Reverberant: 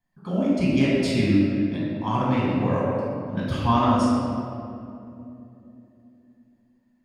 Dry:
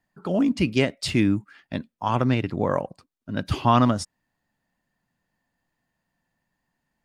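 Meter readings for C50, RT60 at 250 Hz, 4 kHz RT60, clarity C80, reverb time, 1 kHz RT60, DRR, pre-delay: -3.0 dB, 4.1 s, 1.4 s, -1.0 dB, 2.8 s, 2.4 s, -8.0 dB, 6 ms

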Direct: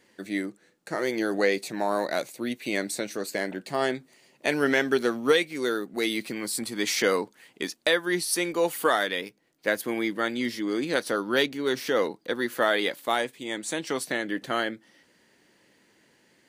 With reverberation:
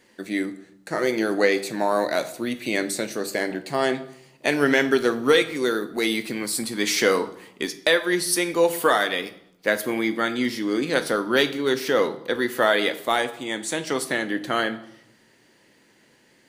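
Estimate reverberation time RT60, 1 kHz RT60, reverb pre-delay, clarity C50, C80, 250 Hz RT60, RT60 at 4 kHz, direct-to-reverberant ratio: 0.75 s, 0.75 s, 8 ms, 14.0 dB, 17.0 dB, 1.2 s, 0.60 s, 9.5 dB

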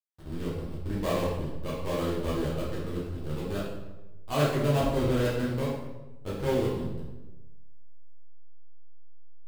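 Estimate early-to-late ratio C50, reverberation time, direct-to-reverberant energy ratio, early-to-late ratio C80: 1.0 dB, 1.1 s, -8.0 dB, 3.5 dB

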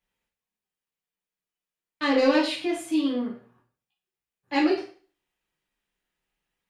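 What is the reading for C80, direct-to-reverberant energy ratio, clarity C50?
11.5 dB, -5.5 dB, 7.0 dB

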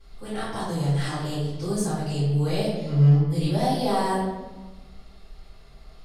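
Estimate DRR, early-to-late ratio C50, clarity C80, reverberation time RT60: -13.0 dB, -1.0 dB, 3.0 dB, 1.2 s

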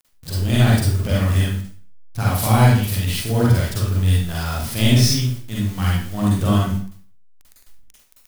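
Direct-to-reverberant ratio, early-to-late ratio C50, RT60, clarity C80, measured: -5.5 dB, -1.0 dB, 0.50 s, 4.5 dB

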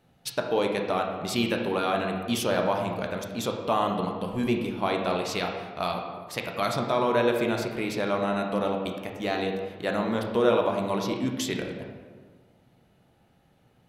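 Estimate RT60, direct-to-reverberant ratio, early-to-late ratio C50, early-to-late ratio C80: 1.5 s, 1.5 dB, 4.5 dB, 6.5 dB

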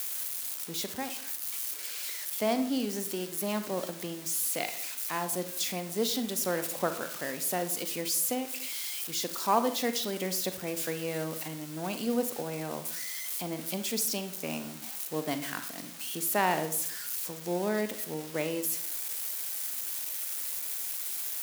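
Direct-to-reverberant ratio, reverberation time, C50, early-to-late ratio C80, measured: 9.0 dB, 0.60 s, 10.5 dB, 14.5 dB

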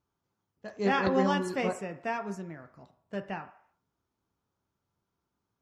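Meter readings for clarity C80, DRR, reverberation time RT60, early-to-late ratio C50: 16.0 dB, 7.0 dB, 0.60 s, 13.5 dB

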